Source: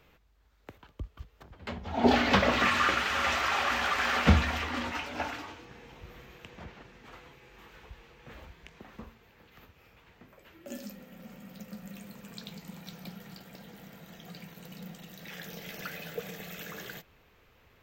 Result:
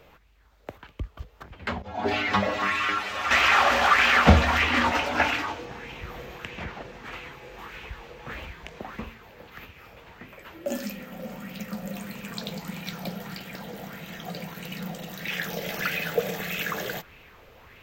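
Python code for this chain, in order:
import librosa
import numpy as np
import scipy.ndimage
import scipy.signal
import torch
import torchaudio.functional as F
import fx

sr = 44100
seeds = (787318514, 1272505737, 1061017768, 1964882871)

p1 = fx.rider(x, sr, range_db=4, speed_s=0.5)
p2 = x + (p1 * 10.0 ** (2.5 / 20.0))
p3 = fx.stiff_resonator(p2, sr, f0_hz=100.0, decay_s=0.22, stiffness=0.002, at=(1.82, 3.31))
p4 = fx.bell_lfo(p3, sr, hz=1.6, low_hz=530.0, high_hz=2700.0, db=9)
y = p4 * 10.0 ** (-1.0 / 20.0)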